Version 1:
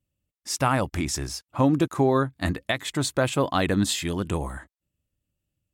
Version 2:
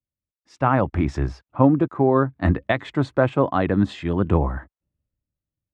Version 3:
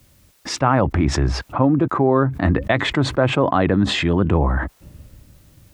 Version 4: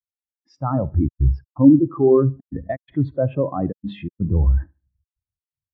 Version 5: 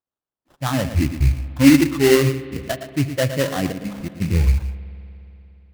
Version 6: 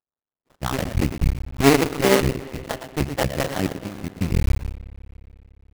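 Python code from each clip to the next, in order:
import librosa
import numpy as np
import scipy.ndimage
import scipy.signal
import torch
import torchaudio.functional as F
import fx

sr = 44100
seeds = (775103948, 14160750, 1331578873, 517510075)

y1 = fx.rider(x, sr, range_db=10, speed_s=0.5)
y1 = scipy.signal.sosfilt(scipy.signal.butter(2, 1500.0, 'lowpass', fs=sr, output='sos'), y1)
y1 = fx.band_widen(y1, sr, depth_pct=40)
y1 = y1 * librosa.db_to_amplitude(5.0)
y2 = fx.env_flatten(y1, sr, amount_pct=70)
y2 = y2 * librosa.db_to_amplitude(-2.0)
y3 = fx.echo_feedback(y2, sr, ms=74, feedback_pct=54, wet_db=-11)
y3 = fx.step_gate(y3, sr, bpm=125, pattern='x.xxxxxxx.x', floor_db=-60.0, edge_ms=4.5)
y3 = fx.spectral_expand(y3, sr, expansion=2.5)
y4 = y3 + 10.0 ** (-10.5 / 20.0) * np.pad(y3, (int(114 * sr / 1000.0), 0))[:len(y3)]
y4 = fx.sample_hold(y4, sr, seeds[0], rate_hz=2400.0, jitter_pct=20)
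y4 = fx.rev_spring(y4, sr, rt60_s=3.2, pass_ms=(59,), chirp_ms=25, drr_db=15.5)
y5 = fx.cycle_switch(y4, sr, every=2, mode='muted')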